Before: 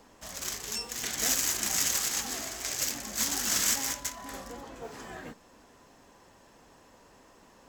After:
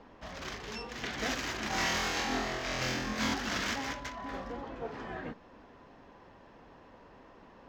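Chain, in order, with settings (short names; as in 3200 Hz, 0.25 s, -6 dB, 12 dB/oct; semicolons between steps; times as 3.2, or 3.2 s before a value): air absorption 280 m; 1.68–3.34 flutter echo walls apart 4 m, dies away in 0.81 s; gain +3.5 dB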